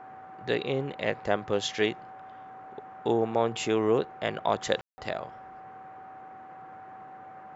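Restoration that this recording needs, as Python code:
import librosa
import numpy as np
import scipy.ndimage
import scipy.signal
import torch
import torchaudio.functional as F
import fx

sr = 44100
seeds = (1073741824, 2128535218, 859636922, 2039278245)

y = fx.notch(x, sr, hz=760.0, q=30.0)
y = fx.fix_ambience(y, sr, seeds[0], print_start_s=7.04, print_end_s=7.54, start_s=4.81, end_s=4.98)
y = fx.noise_reduce(y, sr, print_start_s=7.04, print_end_s=7.54, reduce_db=27.0)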